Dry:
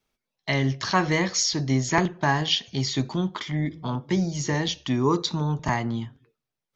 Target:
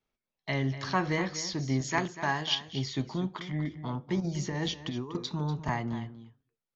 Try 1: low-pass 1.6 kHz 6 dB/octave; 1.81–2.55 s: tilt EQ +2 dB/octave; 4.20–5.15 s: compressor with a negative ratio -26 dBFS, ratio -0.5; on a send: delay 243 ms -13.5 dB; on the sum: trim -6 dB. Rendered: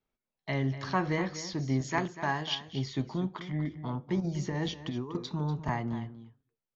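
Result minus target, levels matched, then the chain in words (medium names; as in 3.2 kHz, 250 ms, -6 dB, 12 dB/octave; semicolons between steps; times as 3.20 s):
4 kHz band -3.5 dB
low-pass 3.3 kHz 6 dB/octave; 1.81–2.55 s: tilt EQ +2 dB/octave; 4.20–5.15 s: compressor with a negative ratio -26 dBFS, ratio -0.5; on a send: delay 243 ms -13.5 dB; on the sum: trim -6 dB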